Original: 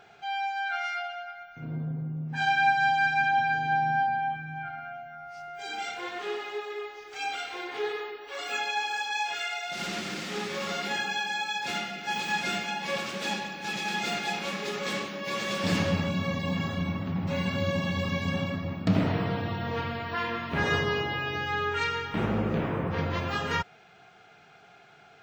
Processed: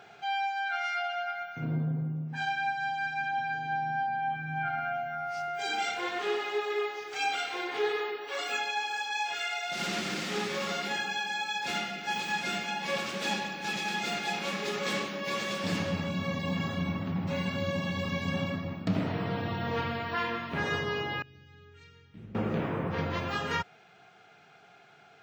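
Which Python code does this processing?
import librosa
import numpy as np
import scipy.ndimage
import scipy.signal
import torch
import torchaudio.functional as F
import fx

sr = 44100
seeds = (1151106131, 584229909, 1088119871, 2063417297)

y = fx.tone_stack(x, sr, knobs='10-0-1', at=(21.22, 22.35))
y = fx.rider(y, sr, range_db=10, speed_s=0.5)
y = scipy.signal.sosfilt(scipy.signal.butter(2, 91.0, 'highpass', fs=sr, output='sos'), y)
y = y * librosa.db_to_amplitude(-2.0)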